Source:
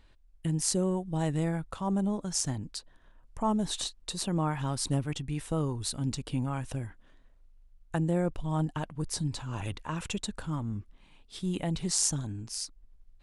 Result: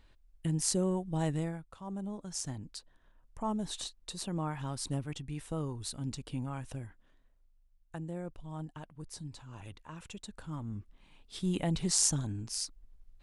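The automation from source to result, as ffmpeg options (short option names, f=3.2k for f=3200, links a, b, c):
-af "volume=18dB,afade=t=out:st=1.29:d=0.35:silence=0.251189,afade=t=in:st=1.64:d=1.04:silence=0.398107,afade=t=out:st=6.7:d=1.3:silence=0.501187,afade=t=in:st=10.2:d=1.25:silence=0.251189"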